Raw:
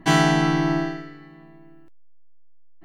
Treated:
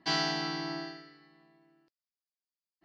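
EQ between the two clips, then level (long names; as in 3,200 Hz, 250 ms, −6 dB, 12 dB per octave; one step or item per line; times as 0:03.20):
high-pass filter 360 Hz 6 dB per octave
transistor ladder low-pass 5,100 Hz, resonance 80%
0.0 dB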